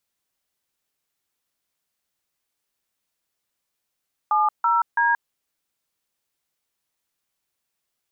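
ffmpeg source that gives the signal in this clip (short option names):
-f lavfi -i "aevalsrc='0.112*clip(min(mod(t,0.331),0.178-mod(t,0.331))/0.002,0,1)*(eq(floor(t/0.331),0)*(sin(2*PI*852*mod(t,0.331))+sin(2*PI*1209*mod(t,0.331)))+eq(floor(t/0.331),1)*(sin(2*PI*941*mod(t,0.331))+sin(2*PI*1336*mod(t,0.331)))+eq(floor(t/0.331),2)*(sin(2*PI*941*mod(t,0.331))+sin(2*PI*1633*mod(t,0.331))))':d=0.993:s=44100"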